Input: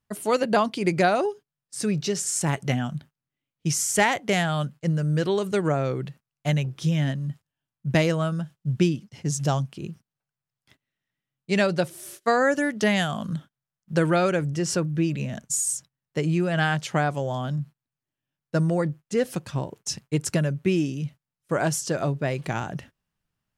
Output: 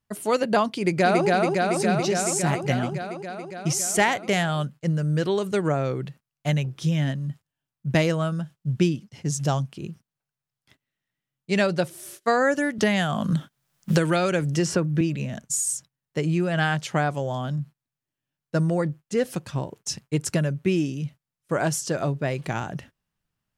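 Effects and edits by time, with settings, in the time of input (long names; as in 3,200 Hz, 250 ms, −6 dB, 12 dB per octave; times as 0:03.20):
0:00.77–0:01.26: delay throw 280 ms, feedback 80%, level −1.5 dB
0:12.78–0:15.01: multiband upward and downward compressor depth 100%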